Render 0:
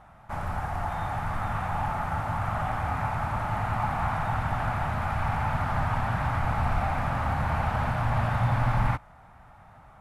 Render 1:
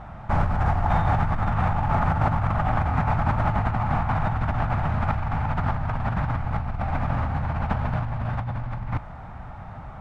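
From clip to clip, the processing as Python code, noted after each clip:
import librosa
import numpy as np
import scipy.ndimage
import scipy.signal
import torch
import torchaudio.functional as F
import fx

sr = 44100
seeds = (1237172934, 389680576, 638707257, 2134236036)

y = scipy.signal.sosfilt(scipy.signal.butter(2, 5300.0, 'lowpass', fs=sr, output='sos'), x)
y = fx.low_shelf(y, sr, hz=470.0, db=8.0)
y = fx.over_compress(y, sr, threshold_db=-27.0, ratio=-1.0)
y = y * 10.0 ** (3.0 / 20.0)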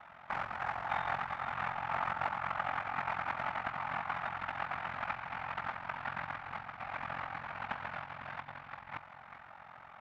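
y = x + 10.0 ** (-10.5 / 20.0) * np.pad(x, (int(396 * sr / 1000.0), 0))[:len(x)]
y = y * np.sin(2.0 * np.pi * 22.0 * np.arange(len(y)) / sr)
y = fx.bandpass_q(y, sr, hz=2400.0, q=0.94)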